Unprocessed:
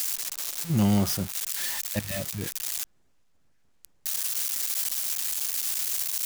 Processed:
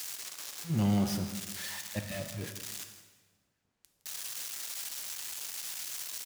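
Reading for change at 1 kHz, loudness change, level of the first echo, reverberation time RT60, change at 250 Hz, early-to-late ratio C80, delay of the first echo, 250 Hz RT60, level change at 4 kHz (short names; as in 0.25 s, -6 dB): -5.0 dB, -8.5 dB, -14.0 dB, 1.4 s, -5.0 dB, 9.0 dB, 0.163 s, 1.5 s, -6.5 dB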